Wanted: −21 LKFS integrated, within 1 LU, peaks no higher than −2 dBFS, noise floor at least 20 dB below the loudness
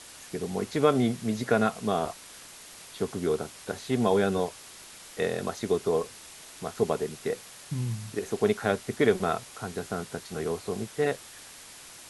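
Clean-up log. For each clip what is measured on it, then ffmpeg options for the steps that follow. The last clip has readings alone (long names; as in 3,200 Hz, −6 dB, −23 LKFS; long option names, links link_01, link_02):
background noise floor −48 dBFS; target noise floor −50 dBFS; integrated loudness −29.5 LKFS; sample peak −7.5 dBFS; target loudness −21.0 LKFS
→ -af "afftdn=noise_reduction=6:noise_floor=-48"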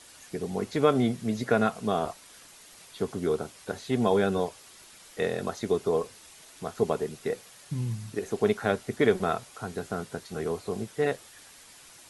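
background noise floor −52 dBFS; integrated loudness −29.5 LKFS; sample peak −7.5 dBFS; target loudness −21.0 LKFS
→ -af "volume=8.5dB,alimiter=limit=-2dB:level=0:latency=1"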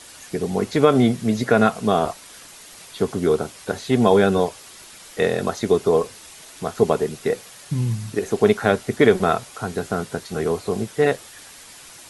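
integrated loudness −21.0 LKFS; sample peak −2.0 dBFS; background noise floor −43 dBFS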